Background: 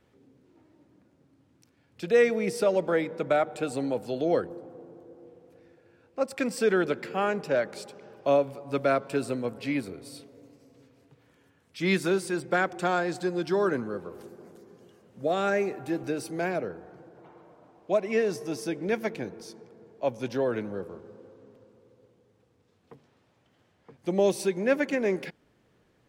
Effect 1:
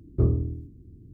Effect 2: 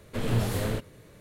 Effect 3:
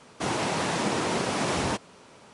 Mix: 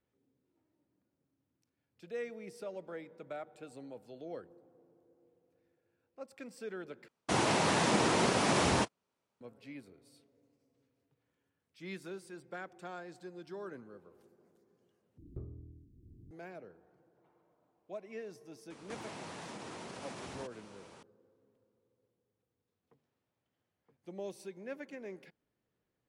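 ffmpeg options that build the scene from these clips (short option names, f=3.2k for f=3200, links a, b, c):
-filter_complex "[3:a]asplit=2[a][b];[0:a]volume=-19dB[c];[a]agate=range=-32dB:threshold=-39dB:ratio=16:release=100:detection=peak[d];[1:a]acompressor=threshold=-37dB:ratio=6:attack=16:release=858:knee=6:detection=peak[e];[b]acompressor=threshold=-39dB:ratio=6:attack=3.2:release=140:knee=1:detection=peak[f];[c]asplit=3[g][h][i];[g]atrim=end=7.084[j];[d]atrim=end=2.33,asetpts=PTS-STARTPTS,volume=-1.5dB[k];[h]atrim=start=9.406:end=15.184[l];[e]atrim=end=1.13,asetpts=PTS-STARTPTS,volume=-6.5dB[m];[i]atrim=start=16.306[n];[f]atrim=end=2.33,asetpts=PTS-STARTPTS,volume=-4.5dB,afade=t=in:d=0.004:c=hsin,afade=t=out:st=2.326:d=0.004:c=hsin,adelay=18700[o];[j][k]acrossfade=d=0.004:c1=hsin:c2=hsin[p];[p][l]acrossfade=d=0.004:c1=hsin:c2=hsin[q];[q][m]acrossfade=d=0.004:c1=hsin:c2=hsin[r];[r][n]acrossfade=d=0.004:c1=hsin:c2=hsin[s];[s][o]amix=inputs=2:normalize=0"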